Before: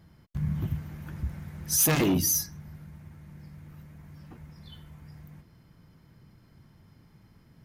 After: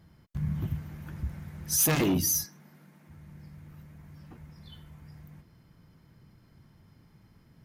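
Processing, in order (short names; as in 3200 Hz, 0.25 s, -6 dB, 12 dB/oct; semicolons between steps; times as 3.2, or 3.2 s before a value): 2.45–3.09 HPF 200 Hz 24 dB/oct; gain -1.5 dB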